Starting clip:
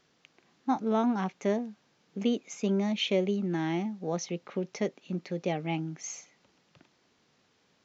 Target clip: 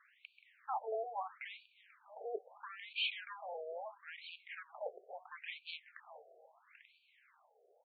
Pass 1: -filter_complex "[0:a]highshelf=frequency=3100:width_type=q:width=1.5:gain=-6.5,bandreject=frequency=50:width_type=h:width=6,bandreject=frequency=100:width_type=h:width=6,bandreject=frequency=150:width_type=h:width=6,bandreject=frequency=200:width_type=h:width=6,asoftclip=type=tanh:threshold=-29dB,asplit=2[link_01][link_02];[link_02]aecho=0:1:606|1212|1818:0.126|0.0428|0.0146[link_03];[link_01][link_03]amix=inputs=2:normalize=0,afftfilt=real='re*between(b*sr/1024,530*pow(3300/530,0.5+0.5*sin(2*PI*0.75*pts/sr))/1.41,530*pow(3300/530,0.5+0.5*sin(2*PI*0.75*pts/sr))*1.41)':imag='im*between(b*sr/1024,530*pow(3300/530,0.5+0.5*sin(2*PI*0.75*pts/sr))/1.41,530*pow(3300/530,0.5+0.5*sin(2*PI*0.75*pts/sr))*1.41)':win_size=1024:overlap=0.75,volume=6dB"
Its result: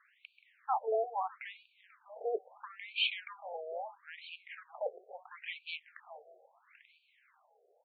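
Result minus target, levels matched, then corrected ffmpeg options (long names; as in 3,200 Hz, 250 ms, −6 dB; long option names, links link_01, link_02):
soft clipping: distortion −5 dB
-filter_complex "[0:a]highshelf=frequency=3100:width_type=q:width=1.5:gain=-6.5,bandreject=frequency=50:width_type=h:width=6,bandreject=frequency=100:width_type=h:width=6,bandreject=frequency=150:width_type=h:width=6,bandreject=frequency=200:width_type=h:width=6,asoftclip=type=tanh:threshold=-37.5dB,asplit=2[link_01][link_02];[link_02]aecho=0:1:606|1212|1818:0.126|0.0428|0.0146[link_03];[link_01][link_03]amix=inputs=2:normalize=0,afftfilt=real='re*between(b*sr/1024,530*pow(3300/530,0.5+0.5*sin(2*PI*0.75*pts/sr))/1.41,530*pow(3300/530,0.5+0.5*sin(2*PI*0.75*pts/sr))*1.41)':imag='im*between(b*sr/1024,530*pow(3300/530,0.5+0.5*sin(2*PI*0.75*pts/sr))/1.41,530*pow(3300/530,0.5+0.5*sin(2*PI*0.75*pts/sr))*1.41)':win_size=1024:overlap=0.75,volume=6dB"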